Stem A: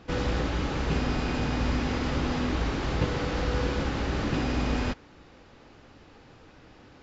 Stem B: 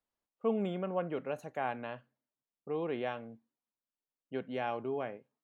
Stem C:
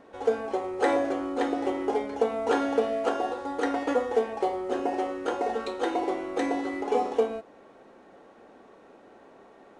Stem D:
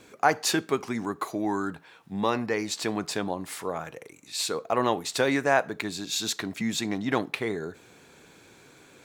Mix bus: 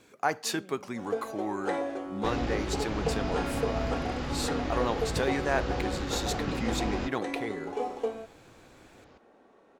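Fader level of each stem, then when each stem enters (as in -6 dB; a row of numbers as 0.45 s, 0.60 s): -5.5 dB, -17.5 dB, -7.0 dB, -6.0 dB; 2.15 s, 0.00 s, 0.85 s, 0.00 s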